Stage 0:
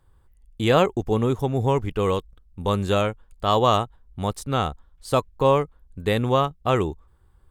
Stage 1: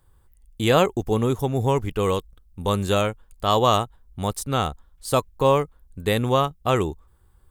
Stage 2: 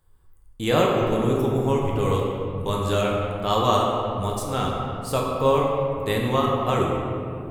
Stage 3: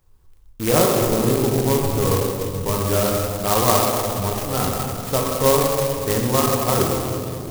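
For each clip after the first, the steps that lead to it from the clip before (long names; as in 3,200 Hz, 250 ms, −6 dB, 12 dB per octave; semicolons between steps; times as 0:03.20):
high-shelf EQ 7,000 Hz +11 dB
convolution reverb RT60 2.5 s, pre-delay 7 ms, DRR −2.5 dB; level −5 dB
converter with an unsteady clock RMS 0.11 ms; level +3 dB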